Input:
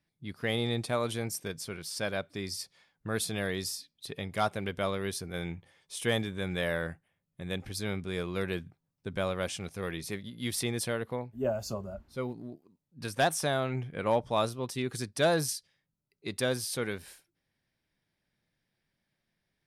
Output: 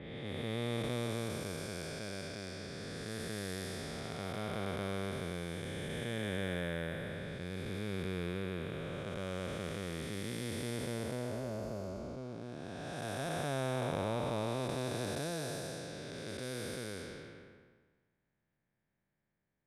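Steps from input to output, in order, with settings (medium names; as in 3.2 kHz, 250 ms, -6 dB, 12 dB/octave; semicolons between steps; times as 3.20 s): spectral blur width 931 ms; level-controlled noise filter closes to 1.7 kHz, open at -36 dBFS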